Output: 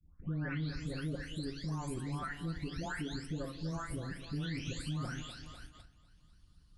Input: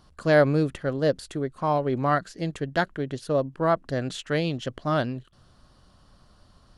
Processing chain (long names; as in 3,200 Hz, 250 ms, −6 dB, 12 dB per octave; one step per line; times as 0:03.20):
every frequency bin delayed by itself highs late, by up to 684 ms
on a send: feedback echo with a high-pass in the loop 248 ms, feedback 58%, high-pass 330 Hz, level −12 dB
on the sum: noise gate −49 dBFS, range −15 dB
guitar amp tone stack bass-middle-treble 6-0-2
harmonic and percussive parts rebalanced harmonic −9 dB
low-shelf EQ 140 Hz +11 dB
feedback delay network reverb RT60 0.48 s, low-frequency decay 1.3×, high-frequency decay 0.6×, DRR 8 dB
brickwall limiter −41.5 dBFS, peak gain reduction 7.5 dB
multiband upward and downward compressor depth 40%
level +11.5 dB